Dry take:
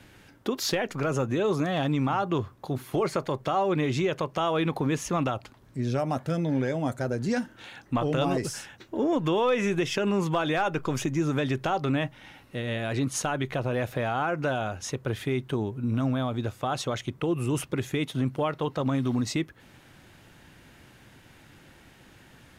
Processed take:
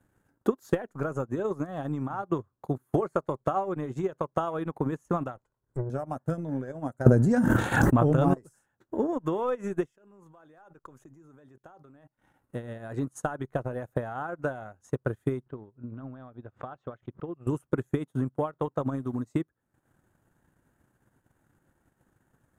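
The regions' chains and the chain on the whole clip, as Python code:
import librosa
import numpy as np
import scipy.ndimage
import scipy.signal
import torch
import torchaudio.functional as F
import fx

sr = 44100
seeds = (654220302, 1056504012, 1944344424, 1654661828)

y = fx.chain(x, sr, fx.lower_of_two(delay_ms=2.0),
    fx.env_lowpass_down(base_hz=830.0, full_db=-26.0), at=(5.36, 5.9))
y = fx.chain(y, sr, fx.peak_eq(hz=120.0, db=7.0, octaves=2.4),
    fx.env_flatten(amount_pct=100), at=(7.06, 8.34))
y = fx.chain(y, sr, fx.low_shelf(hz=150.0, db=-6.5),
    fx.level_steps(step_db=20), at=(9.86, 12.18))
y = fx.chain(y, sr, fx.ladder_lowpass(hz=3900.0, resonance_pct=25),
    fx.pre_swell(db_per_s=140.0), at=(15.46, 17.47))
y = fx.band_shelf(y, sr, hz=3400.0, db=-14.5, octaves=1.7)
y = fx.transient(y, sr, attack_db=8, sustain_db=-11)
y = fx.upward_expand(y, sr, threshold_db=-42.0, expansion=1.5)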